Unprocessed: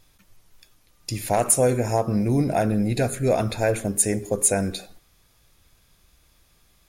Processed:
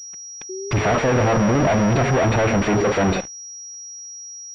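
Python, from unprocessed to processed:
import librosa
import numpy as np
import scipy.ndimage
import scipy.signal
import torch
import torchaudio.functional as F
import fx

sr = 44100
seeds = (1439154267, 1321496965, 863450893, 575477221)

y = fx.self_delay(x, sr, depth_ms=0.14)
y = scipy.signal.sosfilt(scipy.signal.butter(2, 46.0, 'highpass', fs=sr, output='sos'), y)
y = fx.stretch_vocoder(y, sr, factor=0.66)
y = fx.fuzz(y, sr, gain_db=43.0, gate_db=-52.0)
y = fx.spec_paint(y, sr, seeds[0], shape='rise', start_s=0.49, length_s=1.67, low_hz=370.0, high_hz=740.0, level_db=-28.0)
y = fx.pwm(y, sr, carrier_hz=5700.0)
y = y * librosa.db_to_amplitude(-3.0)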